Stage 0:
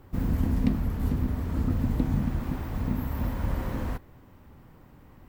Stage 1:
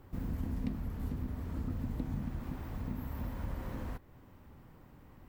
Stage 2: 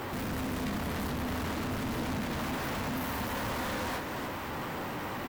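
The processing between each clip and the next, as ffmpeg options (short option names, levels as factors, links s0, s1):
-af "acompressor=threshold=0.00891:ratio=1.5,volume=0.631"
-filter_complex "[0:a]flanger=delay=8.5:depth=5.6:regen=-50:speed=0.57:shape=sinusoidal,asplit=2[s0][s1];[s1]highpass=f=720:p=1,volume=158,asoftclip=type=tanh:threshold=0.0447[s2];[s0][s2]amix=inputs=2:normalize=0,lowpass=f=7500:p=1,volume=0.501,aecho=1:1:294:0.447,volume=0.891"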